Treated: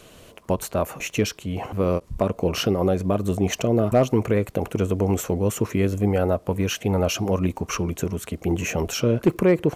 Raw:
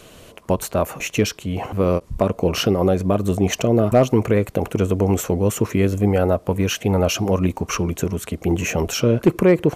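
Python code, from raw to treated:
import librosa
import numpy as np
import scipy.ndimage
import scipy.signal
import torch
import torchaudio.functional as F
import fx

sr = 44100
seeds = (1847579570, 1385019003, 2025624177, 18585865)

y = fx.dmg_crackle(x, sr, seeds[0], per_s=29.0, level_db=-43.0)
y = y * librosa.db_to_amplitude(-3.5)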